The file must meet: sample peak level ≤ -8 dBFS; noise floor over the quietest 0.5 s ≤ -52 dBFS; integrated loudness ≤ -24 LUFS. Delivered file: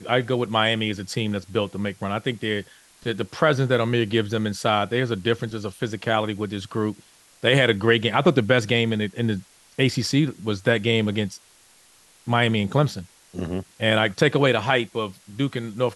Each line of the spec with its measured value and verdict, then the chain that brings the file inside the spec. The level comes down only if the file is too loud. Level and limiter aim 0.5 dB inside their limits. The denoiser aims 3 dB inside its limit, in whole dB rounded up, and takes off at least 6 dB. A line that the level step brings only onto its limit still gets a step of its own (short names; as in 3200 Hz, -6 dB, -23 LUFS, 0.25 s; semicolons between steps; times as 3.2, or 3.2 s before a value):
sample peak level -5.0 dBFS: fail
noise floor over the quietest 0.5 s -55 dBFS: OK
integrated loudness -23.0 LUFS: fail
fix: gain -1.5 dB; limiter -8.5 dBFS